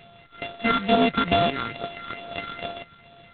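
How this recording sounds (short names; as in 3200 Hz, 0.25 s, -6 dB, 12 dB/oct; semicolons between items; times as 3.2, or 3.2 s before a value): a buzz of ramps at a fixed pitch in blocks of 64 samples; phasing stages 6, 2.3 Hz, lowest notch 640–2200 Hz; G.726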